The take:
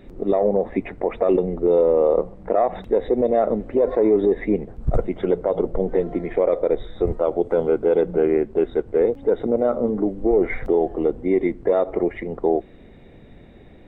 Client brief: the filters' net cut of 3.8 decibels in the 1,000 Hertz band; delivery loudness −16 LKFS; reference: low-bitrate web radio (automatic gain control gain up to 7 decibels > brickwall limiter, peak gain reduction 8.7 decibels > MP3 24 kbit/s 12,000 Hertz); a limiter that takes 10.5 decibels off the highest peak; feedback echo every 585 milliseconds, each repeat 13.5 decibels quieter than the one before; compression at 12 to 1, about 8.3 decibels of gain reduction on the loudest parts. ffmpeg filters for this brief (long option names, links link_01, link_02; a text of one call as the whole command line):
ffmpeg -i in.wav -af "equalizer=frequency=1000:width_type=o:gain=-6.5,acompressor=threshold=-21dB:ratio=12,alimiter=limit=-22.5dB:level=0:latency=1,aecho=1:1:585|1170:0.211|0.0444,dynaudnorm=maxgain=7dB,alimiter=level_in=5.5dB:limit=-24dB:level=0:latency=1,volume=-5.5dB,volume=23dB" -ar 12000 -c:a libmp3lame -b:a 24k out.mp3